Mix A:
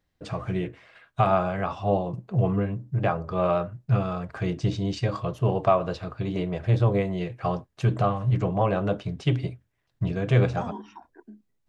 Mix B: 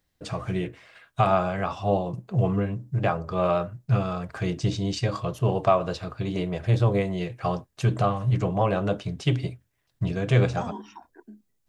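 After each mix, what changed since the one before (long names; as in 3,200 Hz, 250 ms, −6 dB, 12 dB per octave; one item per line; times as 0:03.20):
master: add high-shelf EQ 5,100 Hz +11 dB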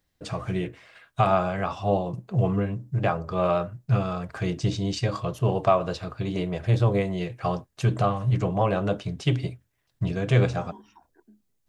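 second voice −9.5 dB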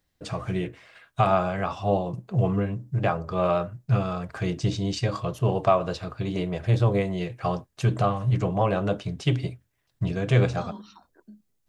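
second voice: remove phaser with its sweep stopped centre 840 Hz, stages 8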